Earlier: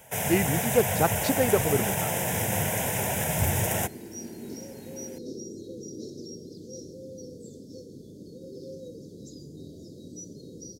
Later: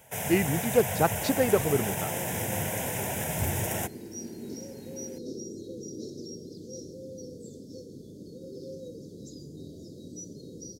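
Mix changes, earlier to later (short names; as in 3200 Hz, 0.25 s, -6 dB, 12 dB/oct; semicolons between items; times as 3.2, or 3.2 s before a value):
first sound -4.0 dB; second sound: remove Butterworth band-stop 1300 Hz, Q 7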